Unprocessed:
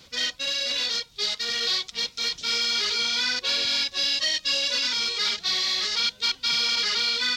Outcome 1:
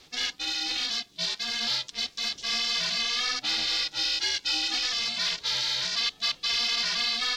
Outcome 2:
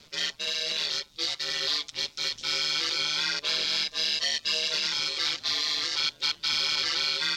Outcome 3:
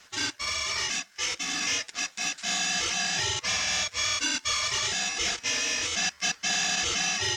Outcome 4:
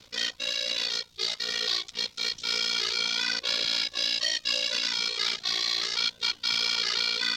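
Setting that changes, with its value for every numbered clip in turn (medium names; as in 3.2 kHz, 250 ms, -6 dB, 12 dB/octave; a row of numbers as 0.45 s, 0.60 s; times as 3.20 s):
ring modulator, frequency: 240 Hz, 76 Hz, 1.6 kHz, 29 Hz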